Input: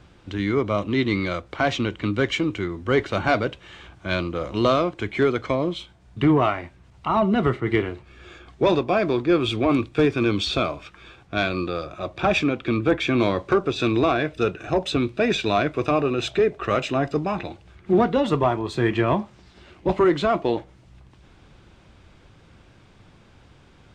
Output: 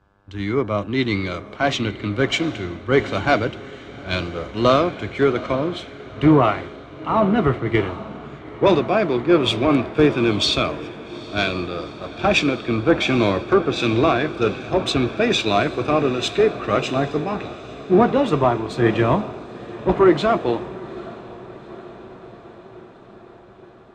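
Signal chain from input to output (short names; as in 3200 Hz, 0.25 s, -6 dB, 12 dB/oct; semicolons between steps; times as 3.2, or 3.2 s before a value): buzz 100 Hz, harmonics 17, -48 dBFS -1 dB/oct; diffused feedback echo 0.835 s, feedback 77%, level -12 dB; three-band expander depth 70%; gain +2 dB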